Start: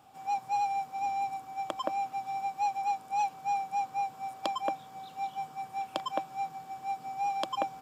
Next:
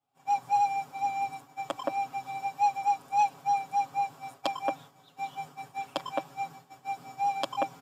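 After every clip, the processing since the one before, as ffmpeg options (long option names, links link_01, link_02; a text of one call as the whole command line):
ffmpeg -i in.wav -af "aecho=1:1:7.2:0.92,agate=range=-33dB:threshold=-42dB:ratio=3:detection=peak" out.wav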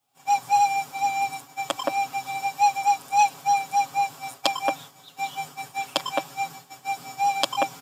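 ffmpeg -i in.wav -af "highshelf=frequency=2200:gain=12,volume=4dB" out.wav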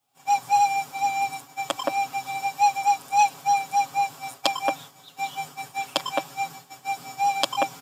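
ffmpeg -i in.wav -af anull out.wav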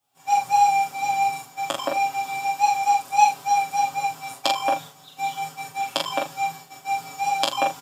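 ffmpeg -i in.wav -filter_complex "[0:a]asplit=2[link_01][link_02];[link_02]adelay=38,volume=-11dB[link_03];[link_01][link_03]amix=inputs=2:normalize=0,asplit=2[link_04][link_05];[link_05]aecho=0:1:18|43:0.398|0.668[link_06];[link_04][link_06]amix=inputs=2:normalize=0,volume=-1dB" out.wav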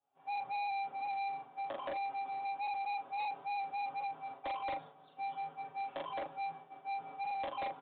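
ffmpeg -i in.wav -af "bandpass=frequency=530:width_type=q:width=0.92:csg=0,aresample=8000,asoftclip=type=tanh:threshold=-30.5dB,aresample=44100,volume=-5dB" out.wav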